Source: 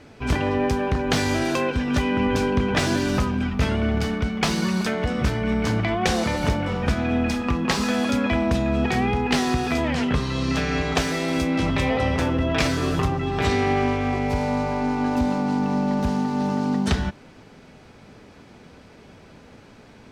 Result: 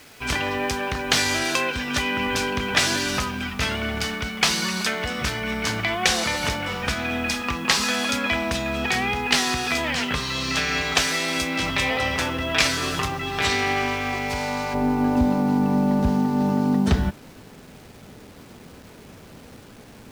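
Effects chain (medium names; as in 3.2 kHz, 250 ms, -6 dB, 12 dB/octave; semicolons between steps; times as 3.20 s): tilt shelf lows -8 dB, about 930 Hz, from 14.73 s lows +3 dB; word length cut 8-bit, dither none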